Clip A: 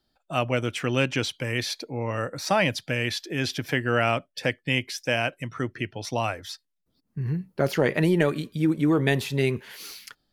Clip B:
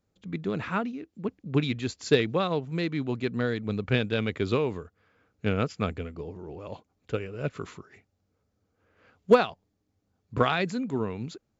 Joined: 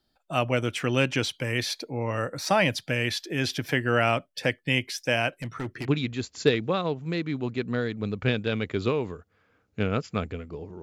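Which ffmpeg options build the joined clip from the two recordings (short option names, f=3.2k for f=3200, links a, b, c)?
-filter_complex "[0:a]asettb=1/sr,asplit=3[a][b][c];[a]atrim=end=5.414[d];[b]atrim=start=5.41:end=5.9,asetpts=PTS-STARTPTS,afade=t=in:d=0.004:c=qsin,afade=t=out:st=0.486:d=0.004:c=qsin,asoftclip=type=hard:threshold=-27.5dB[e];[c]atrim=start=5.896[f];[d][e]acrossfade=d=0.004:c1=hsin:c2=qsin[g];[g][f]acrossfade=d=0.004:c1=qsin:c2=hsin,apad=whole_dur=10.82,atrim=end=10.82,atrim=end=5.9,asetpts=PTS-STARTPTS[h];[1:a]atrim=start=1.48:end=6.48,asetpts=PTS-STARTPTS[i];[h][i]acrossfade=d=0.08:c1=tri:c2=tri"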